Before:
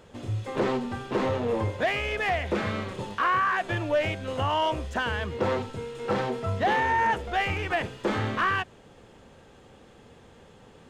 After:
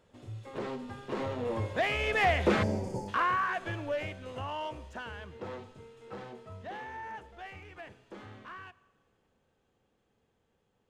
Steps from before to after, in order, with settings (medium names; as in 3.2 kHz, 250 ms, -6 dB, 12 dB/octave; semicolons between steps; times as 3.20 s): Doppler pass-by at 2.49 s, 8 m/s, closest 3.4 m; time-frequency box 2.63–3.08 s, 990–4400 Hz -28 dB; Schroeder reverb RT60 1.5 s, combs from 28 ms, DRR 19 dB; trim +2 dB